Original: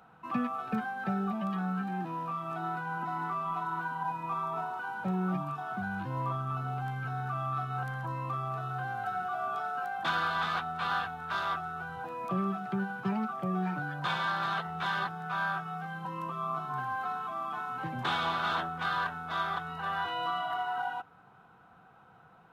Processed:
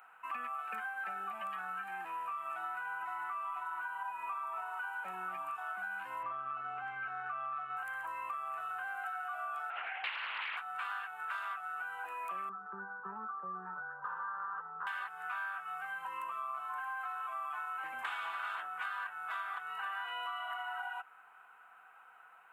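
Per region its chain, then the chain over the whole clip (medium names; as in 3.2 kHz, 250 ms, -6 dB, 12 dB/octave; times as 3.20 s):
6.23–7.77 s: Gaussian low-pass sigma 1.8 samples + bass shelf 410 Hz +8 dB + band-stop 930 Hz, Q 7.1
9.70–10.57 s: resonant high shelf 1.8 kHz +6.5 dB, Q 3 + LPC vocoder at 8 kHz whisper + loudspeaker Doppler distortion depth 0.4 ms
12.49–14.87 s: low-pass 1.7 kHz 24 dB/octave + tilt shelf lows +5.5 dB, about 730 Hz + static phaser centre 450 Hz, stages 8
whole clip: high-pass 1.4 kHz 12 dB/octave; high-order bell 4.6 kHz -15 dB 1.1 oct; compression, threshold -43 dBFS; trim +6 dB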